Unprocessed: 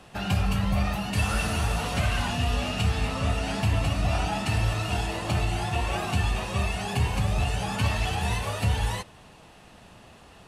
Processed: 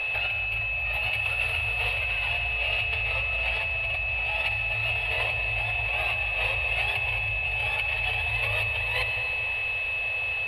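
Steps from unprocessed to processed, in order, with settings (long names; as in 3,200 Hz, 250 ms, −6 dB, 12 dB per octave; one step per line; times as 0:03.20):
brickwall limiter −24 dBFS, peak gain reduction 9.5 dB
compressor whose output falls as the input rises −36 dBFS, ratio −0.5
drawn EQ curve 110 Hz 0 dB, 200 Hz −27 dB, 300 Hz −21 dB, 500 Hz +4 dB, 1,500 Hz −2 dB, 2,300 Hz +14 dB, 4,000 Hz +4 dB, 6,500 Hz −25 dB, 11,000 Hz 0 dB
echo ahead of the sound 144 ms −13 dB
convolution reverb RT60 4.5 s, pre-delay 62 ms, DRR 4.5 dB
steady tone 2,600 Hz −28 dBFS
level +1.5 dB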